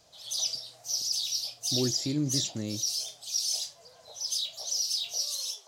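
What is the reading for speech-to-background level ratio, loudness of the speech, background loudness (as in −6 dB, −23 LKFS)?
−3.0 dB, −33.0 LKFS, −30.0 LKFS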